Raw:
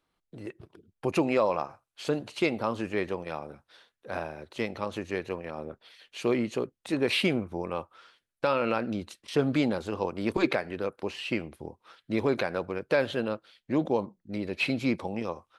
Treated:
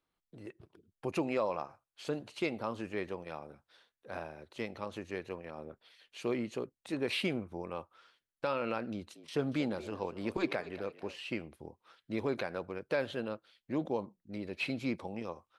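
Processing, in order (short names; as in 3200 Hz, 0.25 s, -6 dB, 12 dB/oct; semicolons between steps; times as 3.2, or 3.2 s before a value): 8.92–11.18 frequency-shifting echo 0.233 s, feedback 37%, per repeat +70 Hz, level -16 dB; gain -7.5 dB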